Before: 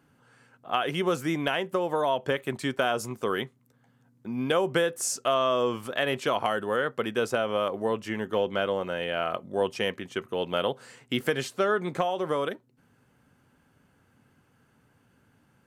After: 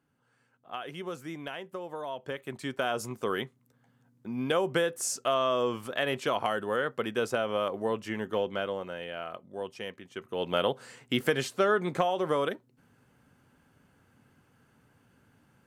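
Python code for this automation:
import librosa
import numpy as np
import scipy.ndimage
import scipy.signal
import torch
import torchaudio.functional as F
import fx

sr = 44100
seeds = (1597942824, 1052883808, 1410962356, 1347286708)

y = fx.gain(x, sr, db=fx.line((2.08, -11.5), (3.04, -2.5), (8.29, -2.5), (9.37, -10.5), (10.08, -10.5), (10.5, 0.0)))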